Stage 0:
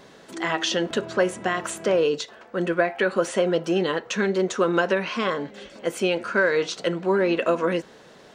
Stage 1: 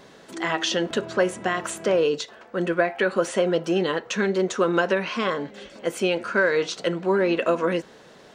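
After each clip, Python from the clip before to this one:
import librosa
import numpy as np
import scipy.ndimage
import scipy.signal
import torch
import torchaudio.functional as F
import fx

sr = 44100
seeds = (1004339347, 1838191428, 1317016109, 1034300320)

y = x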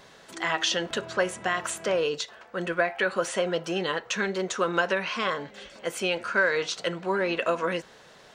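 y = fx.peak_eq(x, sr, hz=280.0, db=-9.0, octaves=1.9)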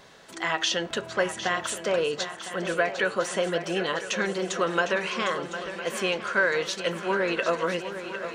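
y = fx.echo_swing(x, sr, ms=1007, ratio=3, feedback_pct=53, wet_db=-11.0)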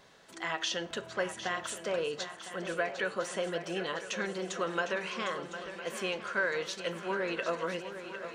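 y = fx.rev_schroeder(x, sr, rt60_s=0.49, comb_ms=32, drr_db=19.5)
y = F.gain(torch.from_numpy(y), -7.5).numpy()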